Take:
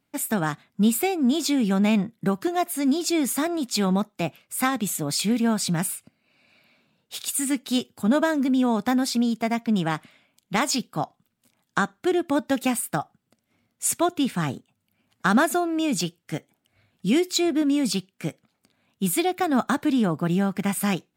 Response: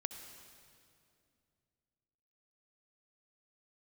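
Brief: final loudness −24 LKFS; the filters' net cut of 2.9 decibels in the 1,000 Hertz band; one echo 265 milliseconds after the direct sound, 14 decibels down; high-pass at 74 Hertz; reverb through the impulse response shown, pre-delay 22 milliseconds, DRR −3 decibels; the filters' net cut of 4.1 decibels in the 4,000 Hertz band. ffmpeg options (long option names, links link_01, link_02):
-filter_complex "[0:a]highpass=74,equalizer=frequency=1000:width_type=o:gain=-4,equalizer=frequency=4000:width_type=o:gain=-5,aecho=1:1:265:0.2,asplit=2[link_01][link_02];[1:a]atrim=start_sample=2205,adelay=22[link_03];[link_02][link_03]afir=irnorm=-1:irlink=0,volume=4dB[link_04];[link_01][link_04]amix=inputs=2:normalize=0,volume=-3.5dB"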